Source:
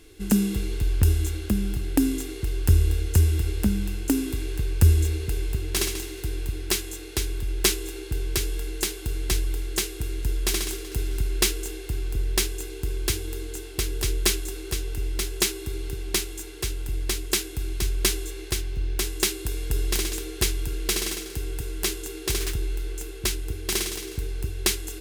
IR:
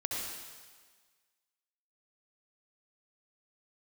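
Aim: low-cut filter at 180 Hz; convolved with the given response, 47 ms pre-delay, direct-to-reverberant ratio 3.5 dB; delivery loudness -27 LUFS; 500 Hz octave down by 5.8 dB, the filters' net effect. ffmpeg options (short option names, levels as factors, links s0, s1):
-filter_complex "[0:a]highpass=180,equalizer=f=500:t=o:g=-8.5,asplit=2[s0][s1];[1:a]atrim=start_sample=2205,adelay=47[s2];[s1][s2]afir=irnorm=-1:irlink=0,volume=0.422[s3];[s0][s3]amix=inputs=2:normalize=0,volume=1.19"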